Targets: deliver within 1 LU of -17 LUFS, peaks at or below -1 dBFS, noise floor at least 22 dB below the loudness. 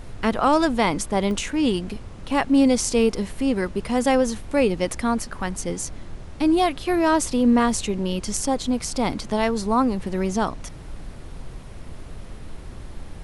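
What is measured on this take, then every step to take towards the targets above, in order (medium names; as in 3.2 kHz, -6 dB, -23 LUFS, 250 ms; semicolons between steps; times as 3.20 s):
dropouts 2; longest dropout 1.1 ms; noise floor -38 dBFS; noise floor target -45 dBFS; loudness -22.5 LUFS; peak level -5.5 dBFS; loudness target -17.0 LUFS
-> interpolate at 1.31/7.21 s, 1.1 ms; noise print and reduce 7 dB; trim +5.5 dB; peak limiter -1 dBFS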